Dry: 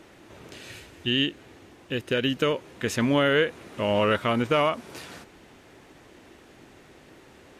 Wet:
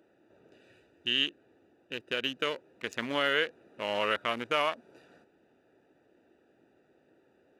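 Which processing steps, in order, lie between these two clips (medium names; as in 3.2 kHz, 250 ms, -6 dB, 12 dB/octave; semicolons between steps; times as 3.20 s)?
local Wiener filter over 41 samples; high-pass 1.2 kHz 6 dB/octave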